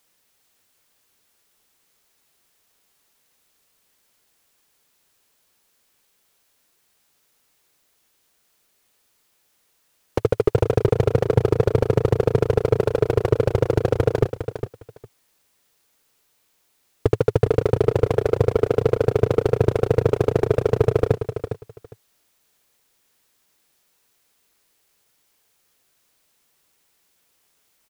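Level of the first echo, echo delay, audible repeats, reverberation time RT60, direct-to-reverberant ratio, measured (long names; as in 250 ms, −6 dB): −9.5 dB, 407 ms, 2, no reverb audible, no reverb audible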